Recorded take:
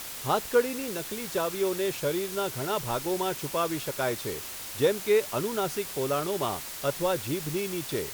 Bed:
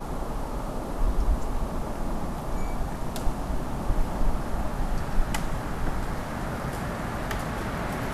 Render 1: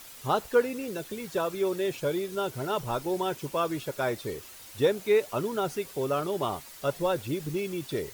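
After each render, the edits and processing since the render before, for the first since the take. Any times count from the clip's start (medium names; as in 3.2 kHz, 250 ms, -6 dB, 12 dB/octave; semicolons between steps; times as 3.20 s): noise reduction 10 dB, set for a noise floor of -39 dBFS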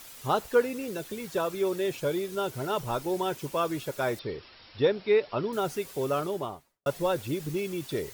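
4.19–5.53 s: brick-wall FIR low-pass 5.6 kHz; 6.16–6.86 s: studio fade out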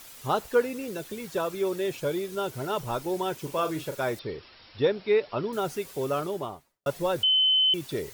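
3.43–3.96 s: doubling 38 ms -8.5 dB; 7.23–7.74 s: bleep 3.05 kHz -18.5 dBFS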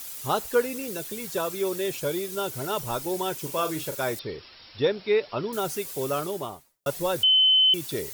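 treble shelf 4.8 kHz +11 dB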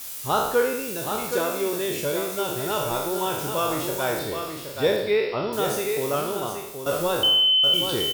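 spectral sustain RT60 0.83 s; delay 773 ms -7 dB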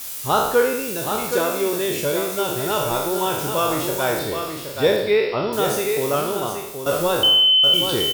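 trim +4 dB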